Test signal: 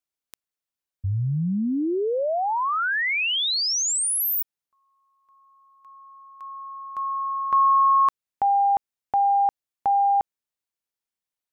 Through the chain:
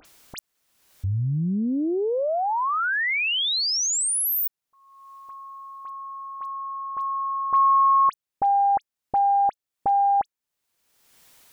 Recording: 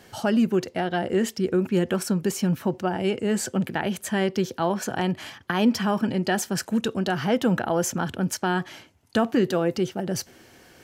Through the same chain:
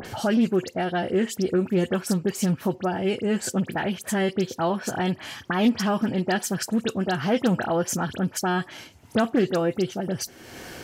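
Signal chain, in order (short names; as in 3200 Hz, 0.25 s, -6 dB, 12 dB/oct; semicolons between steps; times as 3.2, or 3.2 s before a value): dispersion highs, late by 53 ms, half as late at 2900 Hz; upward compressor, threshold -27 dBFS; Doppler distortion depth 0.15 ms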